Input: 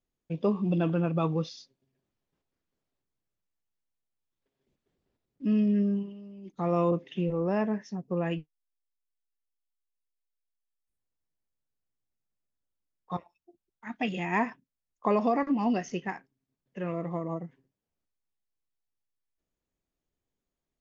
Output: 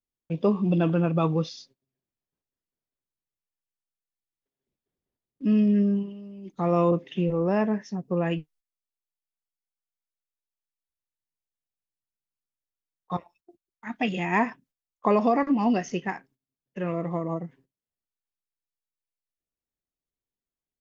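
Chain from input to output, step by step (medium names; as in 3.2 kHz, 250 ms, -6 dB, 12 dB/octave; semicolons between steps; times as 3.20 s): gate -60 dBFS, range -14 dB; trim +4 dB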